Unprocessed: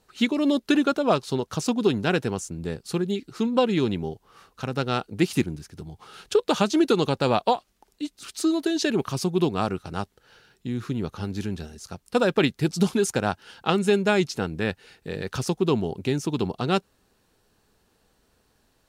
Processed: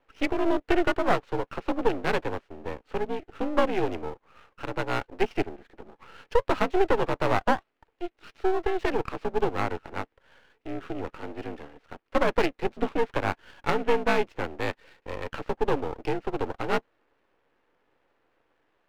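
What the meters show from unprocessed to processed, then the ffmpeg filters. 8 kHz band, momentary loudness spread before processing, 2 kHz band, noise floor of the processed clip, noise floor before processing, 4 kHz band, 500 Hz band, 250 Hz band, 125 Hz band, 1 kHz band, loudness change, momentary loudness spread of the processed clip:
below −15 dB, 14 LU, −0.5 dB, −75 dBFS, −68 dBFS, −8.5 dB, −2.0 dB, −7.5 dB, −9.0 dB, +0.5 dB, −3.5 dB, 14 LU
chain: -af "highpass=frequency=240:width_type=q:width=0.5412,highpass=frequency=240:width_type=q:width=1.307,lowpass=frequency=2600:width_type=q:width=0.5176,lowpass=frequency=2600:width_type=q:width=0.7071,lowpass=frequency=2600:width_type=q:width=1.932,afreqshift=56,aeval=exprs='max(val(0),0)':channel_layout=same,volume=2.5dB"

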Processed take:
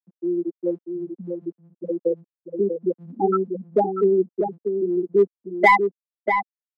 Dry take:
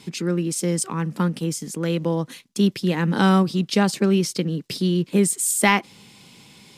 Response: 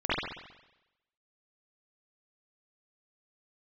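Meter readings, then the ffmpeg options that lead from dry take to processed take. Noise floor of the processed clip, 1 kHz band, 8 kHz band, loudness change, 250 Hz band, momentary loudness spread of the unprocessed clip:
below −85 dBFS, +4.0 dB, below −30 dB, −1.5 dB, −6.0 dB, 9 LU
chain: -filter_complex "[0:a]lowpass=frequency=4200:width=0.5412,lowpass=frequency=4200:width=1.3066,afftfilt=real='re*gte(hypot(re,im),0.562)':imag='im*gte(hypot(re,im),0.562)':win_size=1024:overlap=0.75,highpass=frequency=360:width=0.5412,highpass=frequency=360:width=1.3066,asplit=2[link_01][link_02];[link_02]volume=19.5dB,asoftclip=hard,volume=-19.5dB,volume=-6dB[link_03];[link_01][link_03]amix=inputs=2:normalize=0,asplit=2[link_04][link_05];[link_05]adelay=641.4,volume=-6dB,highshelf=frequency=4000:gain=-14.4[link_06];[link_04][link_06]amix=inputs=2:normalize=0,volume=5dB"

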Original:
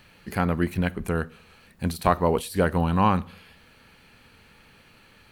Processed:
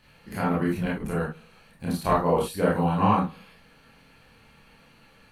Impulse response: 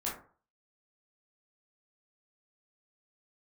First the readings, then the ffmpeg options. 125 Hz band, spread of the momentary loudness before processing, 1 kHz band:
−2.0 dB, 10 LU, 0.0 dB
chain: -filter_complex "[1:a]atrim=start_sample=2205,atrim=end_sample=3087,asetrate=29106,aresample=44100[link_01];[0:a][link_01]afir=irnorm=-1:irlink=0,volume=-6.5dB"

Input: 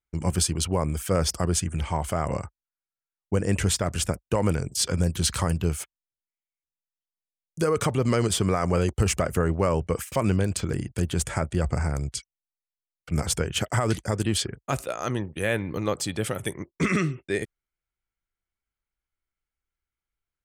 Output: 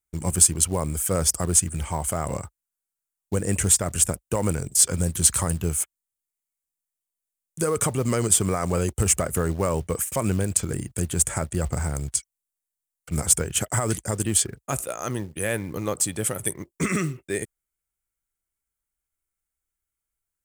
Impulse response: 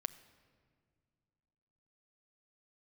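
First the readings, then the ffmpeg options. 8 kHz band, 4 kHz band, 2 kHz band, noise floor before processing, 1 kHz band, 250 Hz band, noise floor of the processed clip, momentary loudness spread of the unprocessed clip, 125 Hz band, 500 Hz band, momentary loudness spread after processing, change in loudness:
+9.5 dB, −2.0 dB, −1.5 dB, below −85 dBFS, −1.0 dB, −1.0 dB, below −85 dBFS, 7 LU, −1.0 dB, −1.0 dB, 11 LU, +3.0 dB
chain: -af "highshelf=frequency=6100:width_type=q:width=1.5:gain=10,acrusher=bits=6:mode=log:mix=0:aa=0.000001,volume=-1dB"

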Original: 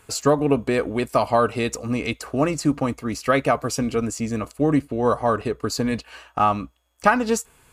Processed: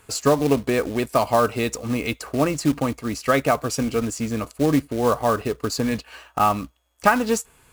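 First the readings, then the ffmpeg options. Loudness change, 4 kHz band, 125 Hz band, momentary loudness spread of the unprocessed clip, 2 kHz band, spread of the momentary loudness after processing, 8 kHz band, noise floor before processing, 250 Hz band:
0.0 dB, +1.0 dB, 0.0 dB, 7 LU, 0.0 dB, 7 LU, +1.0 dB, −58 dBFS, 0.0 dB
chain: -af "acrusher=bits=4:mode=log:mix=0:aa=0.000001"

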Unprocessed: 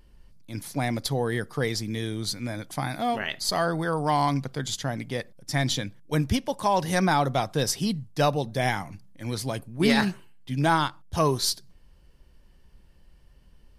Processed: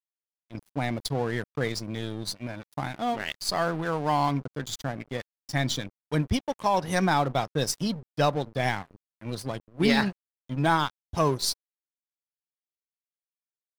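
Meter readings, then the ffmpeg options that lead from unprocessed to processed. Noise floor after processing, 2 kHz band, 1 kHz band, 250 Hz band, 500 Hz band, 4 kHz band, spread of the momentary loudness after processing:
below −85 dBFS, −1.5 dB, −1.0 dB, −1.5 dB, −1.5 dB, −2.0 dB, 12 LU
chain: -af "aeval=exprs='val(0)+0.00126*sin(2*PI*1000*n/s)':channel_layout=same,afftdn=noise_reduction=15:noise_floor=-40,aeval=exprs='sgn(val(0))*max(abs(val(0))-0.0133,0)':channel_layout=same"

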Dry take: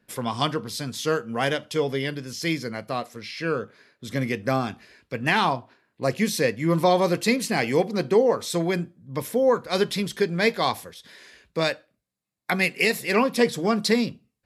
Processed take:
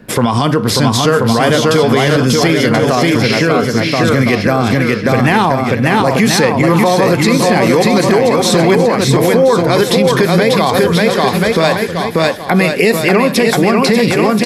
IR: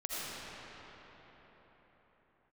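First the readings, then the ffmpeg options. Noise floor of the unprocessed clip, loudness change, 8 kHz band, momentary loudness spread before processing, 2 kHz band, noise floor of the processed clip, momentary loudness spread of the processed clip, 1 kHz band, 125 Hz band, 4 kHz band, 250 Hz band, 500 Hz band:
−77 dBFS, +13.0 dB, +14.0 dB, 11 LU, +12.0 dB, −18 dBFS, 3 LU, +13.5 dB, +17.0 dB, +13.0 dB, +15.0 dB, +13.0 dB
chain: -filter_complex "[0:a]tiltshelf=frequency=1300:gain=5,acrossover=split=900|7800[link_01][link_02][link_03];[link_01]acompressor=threshold=-31dB:ratio=4[link_04];[link_02]acompressor=threshold=-35dB:ratio=4[link_05];[link_03]acompressor=threshold=-51dB:ratio=4[link_06];[link_04][link_05][link_06]amix=inputs=3:normalize=0,aecho=1:1:590|1032|1364|1613|1800:0.631|0.398|0.251|0.158|0.1,alimiter=level_in=24.5dB:limit=-1dB:release=50:level=0:latency=1,volume=-1dB"

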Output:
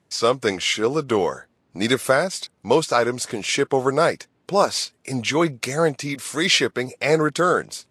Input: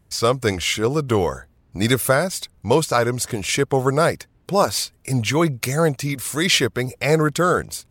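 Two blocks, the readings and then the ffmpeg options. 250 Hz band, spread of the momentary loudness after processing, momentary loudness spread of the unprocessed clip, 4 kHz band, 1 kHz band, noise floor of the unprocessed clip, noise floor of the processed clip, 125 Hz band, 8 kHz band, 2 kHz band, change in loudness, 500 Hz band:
−2.0 dB, 8 LU, 7 LU, 0.0 dB, −0.5 dB, −59 dBFS, −67 dBFS, −8.0 dB, −2.5 dB, 0.0 dB, −1.0 dB, 0.0 dB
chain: -af "highpass=210,lowpass=7500" -ar 32000 -c:a libvorbis -b:a 48k

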